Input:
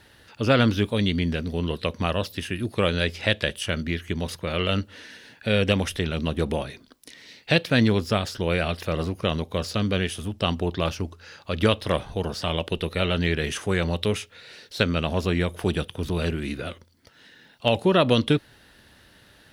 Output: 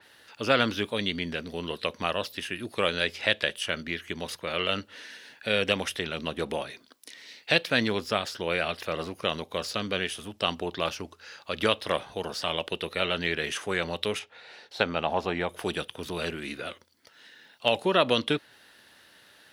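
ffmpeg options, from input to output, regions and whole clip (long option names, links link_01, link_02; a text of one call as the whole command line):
ffmpeg -i in.wav -filter_complex "[0:a]asettb=1/sr,asplit=3[link_01][link_02][link_03];[link_01]atrim=end=14.194[link_04];[link_02]atrim=start=14.19:end=15.49,asetpts=PTS-STARTPTS,afade=type=in:duration=0.004:curve=qsin,afade=type=out:start_time=1.296:duration=0.004:curve=qsin,lowpass=frequency=2600:poles=1,equalizer=frequency=800:width_type=o:width=0.47:gain=11[link_05];[link_03]atrim=start=15.486[link_06];[link_04][link_05]acrossfade=duration=0.004:curve1=hsin:curve2=qsin[link_07];[link_07][link_06]acrossfade=duration=0.004:curve1=qsin:curve2=hsin,highpass=frequency=590:poles=1,adynamicequalizer=threshold=0.00794:dfrequency=4600:dqfactor=0.7:tfrequency=4600:tqfactor=0.7:attack=5:release=100:ratio=0.375:range=2:mode=cutabove:tftype=highshelf" out.wav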